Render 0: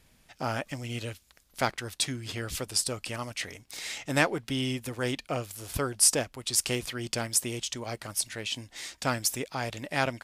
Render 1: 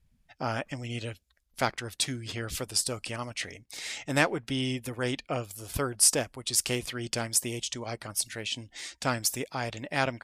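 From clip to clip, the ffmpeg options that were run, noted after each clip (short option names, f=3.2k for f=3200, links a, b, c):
-af "afftdn=nr=18:nf=-53"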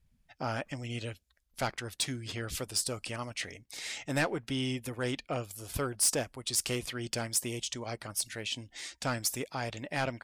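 -af "asoftclip=type=tanh:threshold=-18.5dB,volume=-2dB"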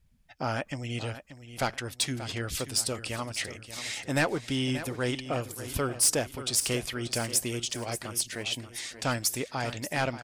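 -af "aecho=1:1:583|1166|1749|2332:0.237|0.0972|0.0399|0.0163,volume=3.5dB"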